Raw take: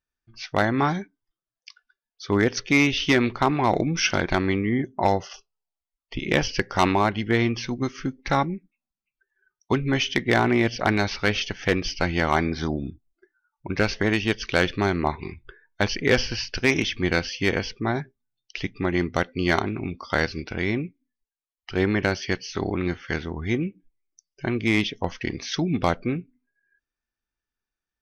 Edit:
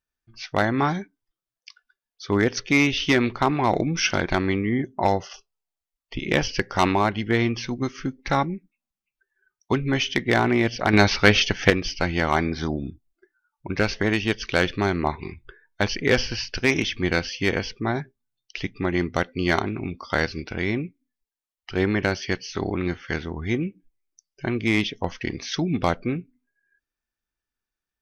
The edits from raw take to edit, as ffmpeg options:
-filter_complex "[0:a]asplit=3[a][b][c];[a]atrim=end=10.932[d];[b]atrim=start=10.928:end=11.702,asetpts=PTS-STARTPTS,volume=7dB[e];[c]atrim=start=11.698[f];[d][e]acrossfade=d=0.004:c1=hsin:c2=hsin[g];[g][f]acrossfade=d=0.004:c1=hsin:c2=hsin"

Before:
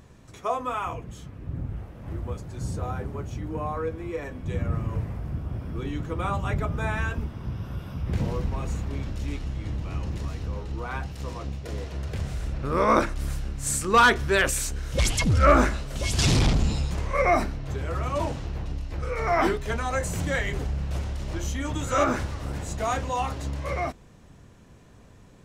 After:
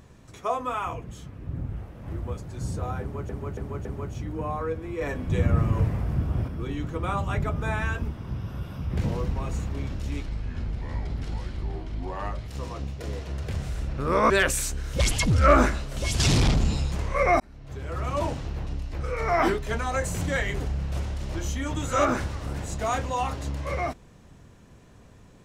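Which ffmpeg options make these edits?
-filter_complex "[0:a]asplit=10[a][b][c][d][e][f][g][h][i][j];[a]atrim=end=3.292[k];[b]atrim=start=3.008:end=3.292[l];[c]atrim=start=3.008:end=3.292[m];[d]atrim=start=3.008:end=4.172[n];[e]atrim=start=4.168:end=5.642,asetpts=PTS-STARTPTS,volume=5.5dB[o];[f]atrim=start=5.638:end=9.424[p];[g]atrim=start=9.42:end=11.13,asetpts=PTS-STARTPTS,asetrate=33957,aresample=44100,atrim=end_sample=97936,asetpts=PTS-STARTPTS[q];[h]atrim=start=11.126:end=12.952[r];[i]atrim=start=14.288:end=17.39,asetpts=PTS-STARTPTS,afade=t=out:st=3.098:d=0.004:c=hsin[s];[j]atrim=start=17.39,asetpts=PTS-STARTPTS,afade=t=in:d=0.72[t];[k][l]acrossfade=d=0.004:c1=hsin:c2=hsin[u];[u][m]acrossfade=d=0.004:c1=hsin:c2=hsin[v];[v][n]acrossfade=d=0.004:c1=hsin:c2=hsin[w];[w][o]acrossfade=d=0.004:c1=hsin:c2=hsin[x];[x][p]acrossfade=d=0.004:c1=hsin:c2=hsin[y];[y][q]acrossfade=d=0.004:c1=hsin:c2=hsin[z];[z][r]acrossfade=d=0.004:c1=hsin:c2=hsin[aa];[s][t]concat=n=2:v=0:a=1[ab];[aa][ab]acrossfade=d=0.004:c1=hsin:c2=hsin"

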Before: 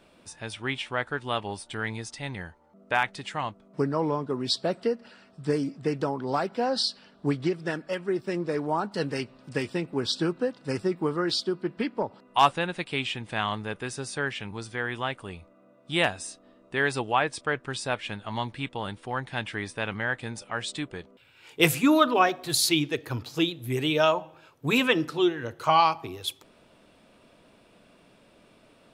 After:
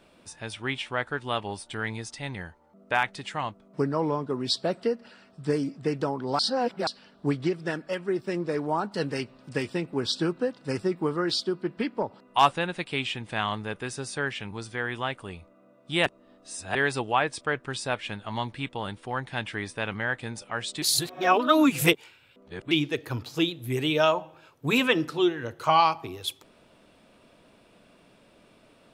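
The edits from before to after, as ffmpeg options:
-filter_complex "[0:a]asplit=7[a][b][c][d][e][f][g];[a]atrim=end=6.392[h];[b]atrim=start=6.388:end=6.872,asetpts=PTS-STARTPTS,areverse[i];[c]atrim=start=6.868:end=16.062[j];[d]atrim=start=16.058:end=16.752,asetpts=PTS-STARTPTS,areverse[k];[e]atrim=start=16.748:end=20.822[l];[f]atrim=start=20.818:end=22.712,asetpts=PTS-STARTPTS,areverse[m];[g]atrim=start=22.708[n];[h][i]acrossfade=d=0.004:c1=hsin:c2=hsin[o];[o][j]acrossfade=d=0.004:c1=hsin:c2=hsin[p];[p][k]acrossfade=d=0.004:c1=hsin:c2=hsin[q];[q][l]acrossfade=d=0.004:c1=hsin:c2=hsin[r];[r][m]acrossfade=d=0.004:c1=hsin:c2=hsin[s];[s][n]acrossfade=d=0.004:c1=hsin:c2=hsin"

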